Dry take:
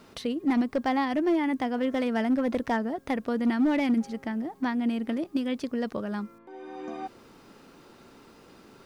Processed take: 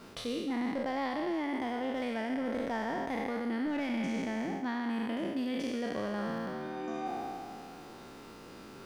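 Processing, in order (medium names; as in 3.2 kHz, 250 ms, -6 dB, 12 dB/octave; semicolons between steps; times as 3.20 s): spectral sustain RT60 2.28 s; reverse; compression 5:1, threshold -32 dBFS, peak gain reduction 12.5 dB; reverse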